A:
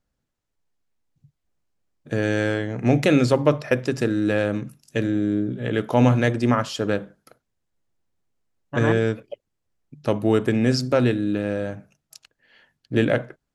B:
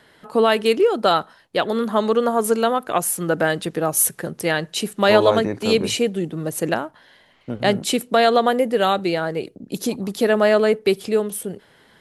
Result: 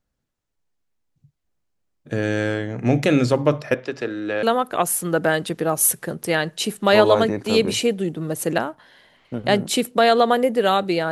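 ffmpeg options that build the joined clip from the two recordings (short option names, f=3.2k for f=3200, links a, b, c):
-filter_complex "[0:a]asettb=1/sr,asplit=3[a][b][c];[a]atrim=end=3.744[d];[b]atrim=start=3.74:end=4.43,asetpts=PTS-STARTPTS,afade=t=in:d=0.004:c=qsin,afade=t=out:st=0.686:d=0.004:c=qsin,acrossover=split=350 5100:gain=0.2 1 0.112[e][f][g];[e][f][g]amix=inputs=3:normalize=0[h];[c]atrim=start=4.426[i];[d][h]acrossfade=d=0.004:c1=hsin:c2=qsin[j];[j][i]acrossfade=d=0.004:c1=qsin:c2=hsin,apad=whole_dur=11.11,atrim=end=11.11,atrim=end=4.432[k];[1:a]atrim=start=2.588:end=9.27[l];[k][l]acrossfade=d=0.004:c1=hsin:c2=hsin"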